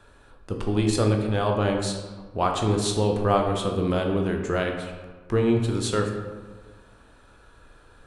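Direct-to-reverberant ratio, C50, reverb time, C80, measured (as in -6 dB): 2.0 dB, 5.0 dB, 1.4 s, 7.0 dB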